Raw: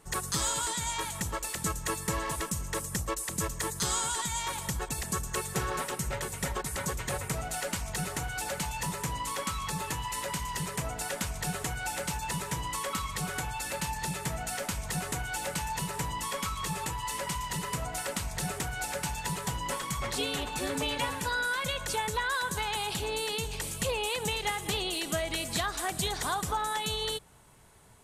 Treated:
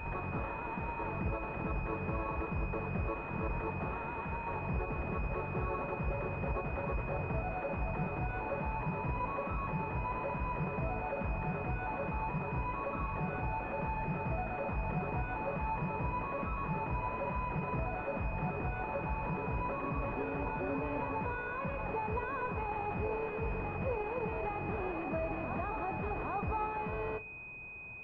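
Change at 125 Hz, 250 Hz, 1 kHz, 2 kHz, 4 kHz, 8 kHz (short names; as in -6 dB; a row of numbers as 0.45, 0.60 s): 0.0 dB, -0.5 dB, -2.5 dB, -5.5 dB, under -25 dB, under -40 dB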